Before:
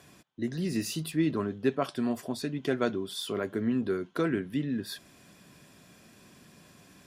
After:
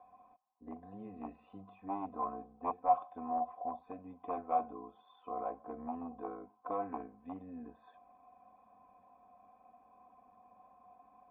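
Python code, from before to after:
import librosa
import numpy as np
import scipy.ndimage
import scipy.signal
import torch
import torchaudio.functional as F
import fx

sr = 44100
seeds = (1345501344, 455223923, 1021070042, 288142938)

y = fx.stretch_grains(x, sr, factor=1.6, grain_ms=21.0)
y = 10.0 ** (-22.5 / 20.0) * (np.abs((y / 10.0 ** (-22.5 / 20.0) + 3.0) % 4.0 - 2.0) - 1.0)
y = fx.formant_cascade(y, sr, vowel='a')
y = y * 10.0 ** (10.5 / 20.0)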